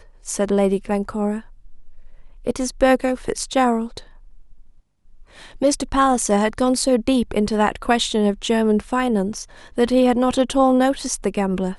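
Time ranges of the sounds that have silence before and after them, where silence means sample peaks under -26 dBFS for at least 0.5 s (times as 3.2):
2.47–3.98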